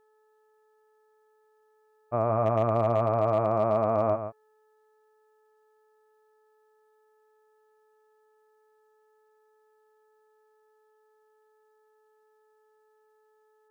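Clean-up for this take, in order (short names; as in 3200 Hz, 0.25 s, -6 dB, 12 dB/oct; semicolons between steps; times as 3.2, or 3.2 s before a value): clip repair -14.5 dBFS; de-hum 431.6 Hz, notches 4; inverse comb 0.141 s -9 dB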